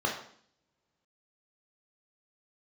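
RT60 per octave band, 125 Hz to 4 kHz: 1.9, 0.85, 0.60, 0.55, 0.55, 0.60 s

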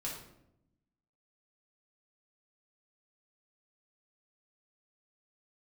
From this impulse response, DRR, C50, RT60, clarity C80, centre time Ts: -4.5 dB, 3.5 dB, 0.80 s, 7.0 dB, 39 ms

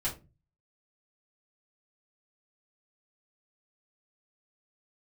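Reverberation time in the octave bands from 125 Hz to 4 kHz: 0.65, 0.45, 0.35, 0.25, 0.20, 0.20 s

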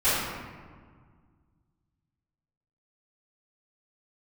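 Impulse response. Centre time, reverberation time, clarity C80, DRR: 0.107 s, 1.7 s, 0.5 dB, -18.0 dB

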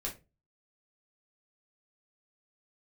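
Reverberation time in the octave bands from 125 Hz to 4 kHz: 0.45, 0.35, 0.30, 0.20, 0.20, 0.20 s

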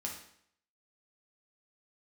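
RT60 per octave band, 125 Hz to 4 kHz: 0.65, 0.65, 0.65, 0.65, 0.65, 0.60 s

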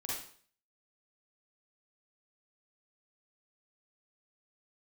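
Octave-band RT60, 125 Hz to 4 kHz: 0.50, 0.45, 0.50, 0.50, 0.50, 0.50 s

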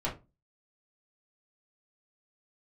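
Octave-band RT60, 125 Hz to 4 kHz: 0.40, 0.35, 0.30, 0.25, 0.20, 0.15 s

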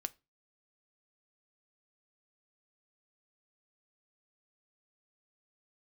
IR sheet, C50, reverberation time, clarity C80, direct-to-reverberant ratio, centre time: 25.0 dB, 0.25 s, 32.0 dB, 11.5 dB, 3 ms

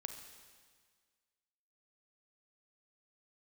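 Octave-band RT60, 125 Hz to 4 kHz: 1.7, 1.7, 1.7, 1.7, 1.7, 1.7 s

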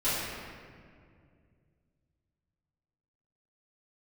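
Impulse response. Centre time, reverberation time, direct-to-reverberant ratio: 0.13 s, 2.2 s, -15.5 dB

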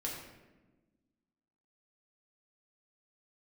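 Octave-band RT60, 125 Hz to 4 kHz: 1.6, 2.0, 1.4, 1.0, 1.0, 0.70 s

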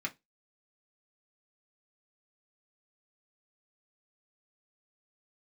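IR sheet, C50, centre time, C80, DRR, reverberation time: 22.0 dB, 6 ms, 32.0 dB, -1.5 dB, 0.20 s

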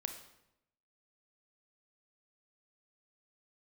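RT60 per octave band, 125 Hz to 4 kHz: 1.0, 1.0, 0.90, 0.80, 0.75, 0.65 s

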